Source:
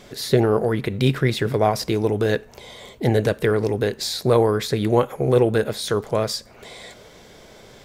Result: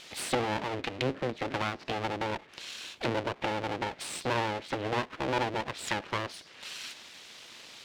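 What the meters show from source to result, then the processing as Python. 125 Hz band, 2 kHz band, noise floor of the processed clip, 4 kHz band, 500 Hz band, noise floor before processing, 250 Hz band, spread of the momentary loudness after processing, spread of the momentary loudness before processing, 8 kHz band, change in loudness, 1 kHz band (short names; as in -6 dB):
-17.0 dB, -4.5 dB, -54 dBFS, -8.0 dB, -15.0 dB, -47 dBFS, -13.5 dB, 12 LU, 10 LU, -7.5 dB, -12.5 dB, -5.0 dB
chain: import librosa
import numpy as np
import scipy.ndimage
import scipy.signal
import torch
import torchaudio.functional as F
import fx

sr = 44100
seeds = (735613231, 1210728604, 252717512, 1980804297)

y = fx.env_lowpass_down(x, sr, base_hz=490.0, full_db=-16.0)
y = np.abs(y)
y = fx.weighting(y, sr, curve='D')
y = F.gain(torch.from_numpy(y), -5.5).numpy()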